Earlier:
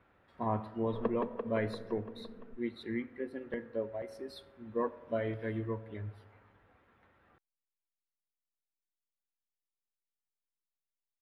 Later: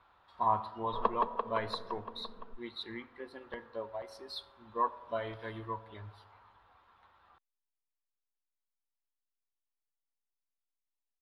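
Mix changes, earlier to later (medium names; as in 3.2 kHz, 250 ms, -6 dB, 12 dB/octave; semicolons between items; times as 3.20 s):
background +4.5 dB; master: add graphic EQ 125/250/500/1000/2000/4000 Hz -7/-9/-6/+12/-7/+11 dB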